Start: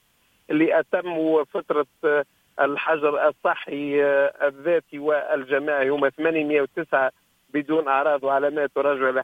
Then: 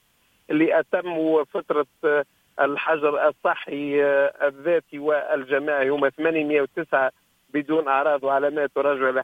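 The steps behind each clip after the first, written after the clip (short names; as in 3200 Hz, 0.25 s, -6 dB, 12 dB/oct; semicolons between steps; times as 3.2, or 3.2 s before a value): nothing audible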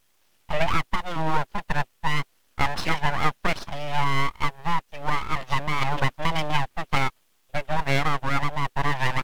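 full-wave rectifier; wow and flutter 28 cents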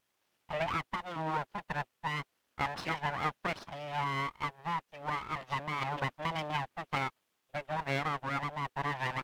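HPF 160 Hz 6 dB/oct; high shelf 3500 Hz -6.5 dB; gain -7.5 dB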